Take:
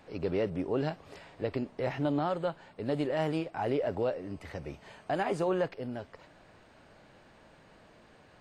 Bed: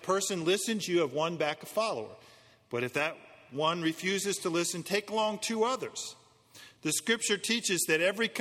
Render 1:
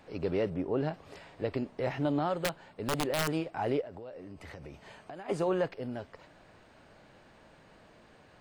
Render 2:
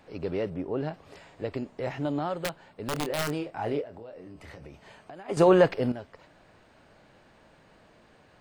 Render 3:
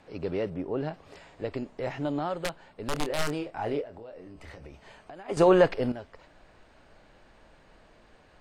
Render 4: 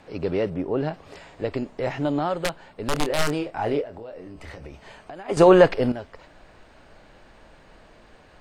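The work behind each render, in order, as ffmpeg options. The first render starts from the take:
-filter_complex "[0:a]asettb=1/sr,asplit=3[a][b][c];[a]atrim=end=0.544[d];[b]atrim=start=0.54:end=0.94,asetpts=PTS-STARTPTS,afade=t=in:d=0.004:c=qsin,afade=t=out:st=0.396:d=0.004:c=qsin,highshelf=f=3.1k:g=-9.5[e];[c]atrim=start=0.936[f];[d][e]acrossfade=d=0.004:c1=hsin:c2=qsin[g];[g][f]acrossfade=d=0.004:c1=qsin:c2=hsin,asettb=1/sr,asplit=3[h][i][j];[h]atrim=end=2.334[k];[i]atrim=start=2.33:end=3.28,asetpts=PTS-STARTPTS,afade=t=in:d=0.004:c=qsin,afade=t=out:st=0.946:d=0.004:c=qsin,aeval=exprs='(mod(14.1*val(0)+1,2)-1)/14.1':c=same[l];[j]atrim=start=3.276[m];[k][l]acrossfade=d=0.004:c1=hsin:c2=qsin[n];[n][m]acrossfade=d=0.004:c1=qsin:c2=hsin,asplit=3[o][p][q];[o]afade=t=out:st=3.8:d=0.02[r];[p]acompressor=threshold=-41dB:ratio=8:attack=3.2:release=140:knee=1:detection=peak,afade=t=in:st=3.8:d=0.02,afade=t=out:st=5.28:d=0.02[s];[q]afade=t=in:st=5.28:d=0.02[t];[r][s][t]amix=inputs=3:normalize=0"
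-filter_complex "[0:a]asettb=1/sr,asplit=3[a][b][c];[a]atrim=end=1.184[d];[b]atrim=start=1.18:end=2.27,asetpts=PTS-STARTPTS,afade=t=in:d=0.004:c=qsin,afade=t=out:st=1.086:d=0.004:c=qsin,equalizer=f=7.1k:w=5:g=7.5[e];[c]atrim=start=2.266[f];[d][e]acrossfade=d=0.004:c1=hsin:c2=qsin[g];[g][f]acrossfade=d=0.004:c1=qsin:c2=hsin,asettb=1/sr,asplit=3[h][i][j];[h]atrim=end=2.934[k];[i]atrim=start=2.93:end=4.67,asetpts=PTS-STARTPTS,afade=t=in:d=0.004:c=qsin,afade=t=out:st=1.736:d=0.004:c=qsin,asplit=2[l][m];[m]adelay=27,volume=-8dB[n];[l][n]amix=inputs=2:normalize=0,atrim=end_sample=76734[o];[j]atrim=start=4.666[p];[k][o]acrossfade=d=0.004:c1=hsin:c2=qsin[q];[q][p]acrossfade=d=0.004:c1=qsin:c2=hsin,asplit=3[r][s][t];[r]atrim=end=5.372[u];[s]atrim=start=5.368:end=5.922,asetpts=PTS-STARTPTS,volume=11dB[v];[t]atrim=start=5.918[w];[u][v]acrossfade=d=0.004:c1=hsin:c2=hsin[x];[x][w]acrossfade=d=0.004:c1=hsin:c2=hsin"
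-af "lowpass=11k,asubboost=boost=4.5:cutoff=54"
-af "volume=6dB"

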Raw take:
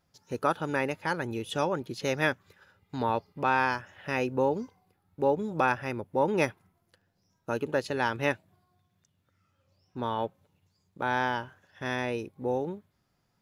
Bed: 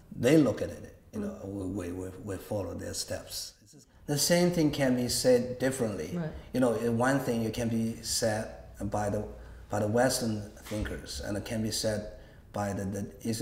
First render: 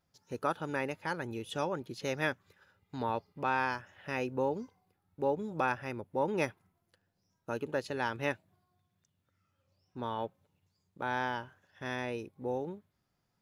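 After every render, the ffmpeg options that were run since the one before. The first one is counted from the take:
-af "volume=-5.5dB"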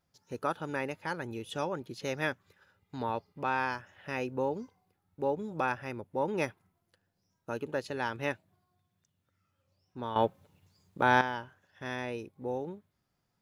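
-filter_complex "[0:a]asplit=3[a][b][c];[a]atrim=end=10.162[d];[b]atrim=start=10.158:end=11.212,asetpts=PTS-STARTPTS,volume=10dB[e];[c]atrim=start=11.208[f];[d][e]acrossfade=d=0.004:c1=hsin:c2=hsin[g];[g][f]acrossfade=d=0.004:c1=hsin:c2=hsin"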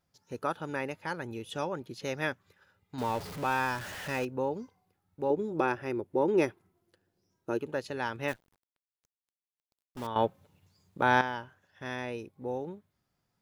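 -filter_complex "[0:a]asettb=1/sr,asplit=3[a][b][c];[a]atrim=end=2.984[d];[b]atrim=start=2.98:end=4.25,asetpts=PTS-STARTPTS,afade=t=in:d=0.004:c=qsin,afade=t=out:st=1.266:d=0.004:c=qsin,aeval=exprs='val(0)+0.5*0.015*sgn(val(0))':c=same[e];[c]atrim=start=4.246[f];[d][e]acrossfade=d=0.004:c1=hsin:c2=qsin[g];[g][f]acrossfade=d=0.004:c1=qsin:c2=hsin,asettb=1/sr,asplit=3[h][i][j];[h]atrim=end=5.304[k];[i]atrim=start=5.3:end=7.59,asetpts=PTS-STARTPTS,afade=t=in:d=0.004:c=qsin,afade=t=out:st=2.286:d=0.004:c=qsin,equalizer=f=360:t=o:w=0.62:g=12[l];[j]atrim=start=7.586[m];[k][l]acrossfade=d=0.004:c1=hsin:c2=qsin[n];[n][m]acrossfade=d=0.004:c1=qsin:c2=hsin,asettb=1/sr,asplit=3[o][p][q];[o]atrim=end=8.284[r];[p]atrim=start=8.28:end=10.07,asetpts=PTS-STARTPTS,afade=t=in:d=0.004:c=qsin,afade=t=out:st=1.786:d=0.004:c=qsin,acrusher=bits=8:dc=4:mix=0:aa=0.000001[s];[q]atrim=start=10.066[t];[r][s]acrossfade=d=0.004:c1=hsin:c2=qsin[u];[u][t]acrossfade=d=0.004:c1=qsin:c2=hsin"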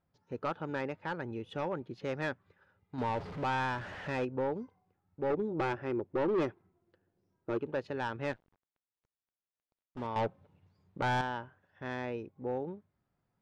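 -af "asoftclip=type=hard:threshold=-26.5dB,adynamicsmooth=sensitivity=1.5:basefreq=2.4k"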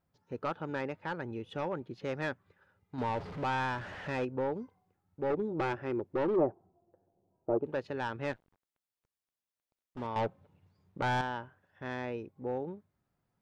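-filter_complex "[0:a]asplit=3[a][b][c];[a]afade=t=out:st=6.35:d=0.02[d];[b]lowpass=f=720:t=q:w=3.8,afade=t=in:st=6.35:d=0.02,afade=t=out:st=7.63:d=0.02[e];[c]afade=t=in:st=7.63:d=0.02[f];[d][e][f]amix=inputs=3:normalize=0"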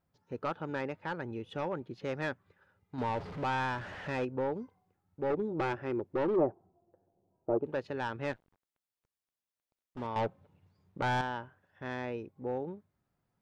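-af anull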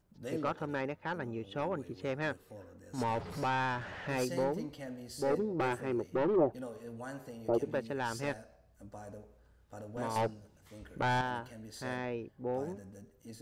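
-filter_complex "[1:a]volume=-17dB[a];[0:a][a]amix=inputs=2:normalize=0"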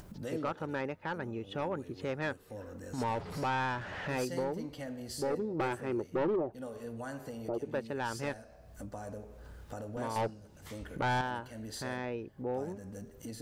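-af "acompressor=mode=upward:threshold=-35dB:ratio=2.5,alimiter=level_in=1.5dB:limit=-24dB:level=0:latency=1:release=203,volume=-1.5dB"

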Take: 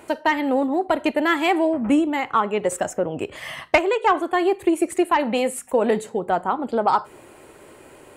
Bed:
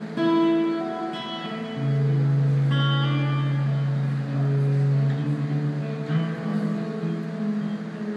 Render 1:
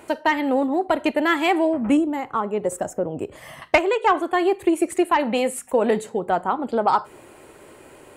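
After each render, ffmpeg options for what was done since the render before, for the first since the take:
-filter_complex "[0:a]asettb=1/sr,asplit=3[a][b][c];[a]atrim=end=1.974[d];[b]atrim=start=1.97:end=3.62,asetpts=PTS-STARTPTS,afade=t=in:d=0.004:c=qsin,afade=t=out:st=1.646:d=0.004:c=qsin,equalizer=f=2.8k:w=0.52:g=-11[e];[c]atrim=start=3.616[f];[d][e]acrossfade=d=0.004:c1=hsin:c2=qsin[g];[g][f]acrossfade=d=0.004:c1=qsin:c2=hsin"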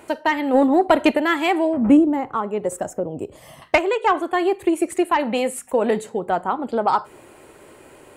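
-filter_complex "[0:a]asplit=3[a][b][c];[a]afade=t=out:st=0.53:d=0.02[d];[b]acontrast=55,afade=t=in:st=0.53:d=0.02,afade=t=out:st=1.16:d=0.02[e];[c]afade=t=in:st=1.16:d=0.02[f];[d][e][f]amix=inputs=3:normalize=0,asettb=1/sr,asplit=3[g][h][i];[g]atrim=end=1.774[j];[h]atrim=start=1.77:end=2.33,asetpts=PTS-STARTPTS,afade=t=in:d=0.004:c=qsin,afade=t=out:st=0.556:d=0.004:c=qsin,tiltshelf=f=1.3k:g=6[k];[i]atrim=start=2.326[l];[j][k]acrossfade=d=0.004:c1=hsin:c2=qsin[m];[m][l]acrossfade=d=0.004:c1=qsin:c2=hsin,asettb=1/sr,asplit=3[n][o][p];[n]atrim=end=3.004[q];[o]atrim=start=3:end=3.65,asetpts=PTS-STARTPTS,afade=t=in:d=0.004:c=qsin,afade=t=out:st=0.646:d=0.004:c=qsin,equalizer=f=1.7k:t=o:w=1.2:g=-10[r];[p]atrim=start=3.646[s];[q][r]acrossfade=d=0.004:c1=hsin:c2=qsin[t];[t][s]acrossfade=d=0.004:c1=qsin:c2=hsin"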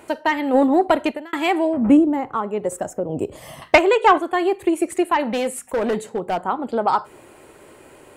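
-filter_complex "[0:a]asettb=1/sr,asplit=3[a][b][c];[a]atrim=end=3.094[d];[b]atrim=start=3.09:end=4.18,asetpts=PTS-STARTPTS,afade=t=in:d=0.004:c=qsin,afade=t=out:st=1.086:d=0.004:c=qsin,acontrast=28[e];[c]atrim=start=4.176[f];[d][e]acrossfade=d=0.004:c1=hsin:c2=qsin[g];[g][f]acrossfade=d=0.004:c1=qsin:c2=hsin,asettb=1/sr,asplit=3[h][i][j];[h]atrim=end=5.234[k];[i]atrim=start=5.23:end=6.38,asetpts=PTS-STARTPTS,afade=t=in:d=0.004:c=qsin,afade=t=out:st=1.146:d=0.004:c=qsin,asoftclip=type=hard:threshold=-17dB[l];[j]atrim=start=6.376[m];[k][l]acrossfade=d=0.004:c1=hsin:c2=qsin[n];[n][m]acrossfade=d=0.004:c1=qsin:c2=hsin,asplit=2[o][p];[o]atrim=end=1.33,asetpts=PTS-STARTPTS,afade=t=out:st=0.84:d=0.49[q];[p]atrim=start=1.33,asetpts=PTS-STARTPTS,afade=t=in:d=0.004:c=hsin[r];[q][r]concat=n=2:v=0:a=1"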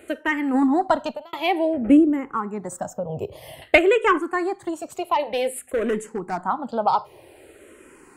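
-filter_complex "[0:a]asplit=2[a][b];[b]afreqshift=-0.53[c];[a][c]amix=inputs=2:normalize=1"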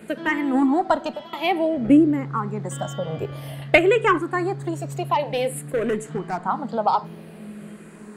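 -filter_complex "[1:a]volume=-12dB[a];[0:a][a]amix=inputs=2:normalize=0"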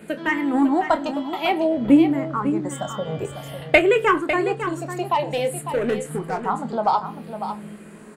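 -filter_complex "[0:a]asplit=2[a][b];[b]adelay=25,volume=-11dB[c];[a][c]amix=inputs=2:normalize=0,asplit=2[d][e];[e]aecho=0:1:551:0.335[f];[d][f]amix=inputs=2:normalize=0"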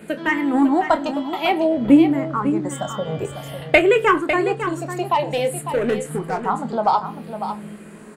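-af "volume=2dB,alimiter=limit=-1dB:level=0:latency=1"

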